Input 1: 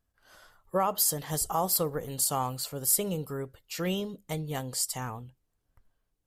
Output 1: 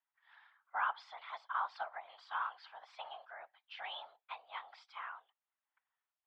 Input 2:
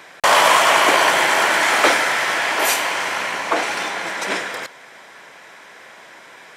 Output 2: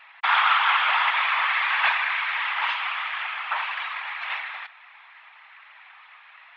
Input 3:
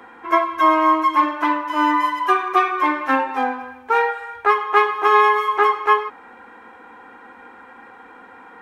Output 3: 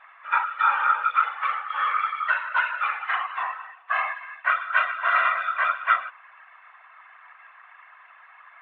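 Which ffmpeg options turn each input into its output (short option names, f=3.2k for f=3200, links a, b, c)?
-af "highpass=f=580:t=q:w=0.5412,highpass=f=580:t=q:w=1.307,lowpass=f=3.2k:t=q:w=0.5176,lowpass=f=3.2k:t=q:w=0.7071,lowpass=f=3.2k:t=q:w=1.932,afreqshift=260,afftfilt=real='hypot(re,im)*cos(2*PI*random(0))':imag='hypot(re,im)*sin(2*PI*random(1))':win_size=512:overlap=0.75"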